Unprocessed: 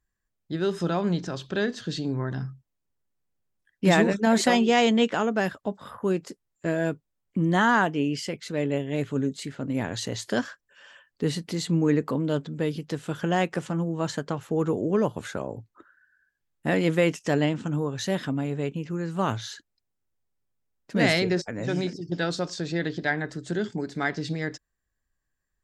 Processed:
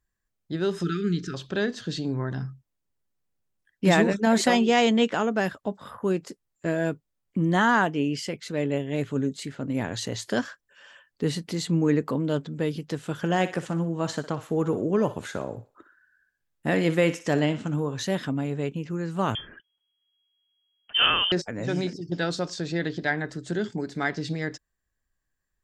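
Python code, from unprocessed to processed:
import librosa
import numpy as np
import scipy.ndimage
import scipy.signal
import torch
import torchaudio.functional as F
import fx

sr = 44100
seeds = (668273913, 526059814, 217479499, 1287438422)

y = fx.spec_erase(x, sr, start_s=0.83, length_s=0.51, low_hz=460.0, high_hz=1200.0)
y = fx.echo_thinned(y, sr, ms=60, feedback_pct=40, hz=470.0, wet_db=-12.5, at=(13.18, 18.04))
y = fx.freq_invert(y, sr, carrier_hz=3300, at=(19.35, 21.32))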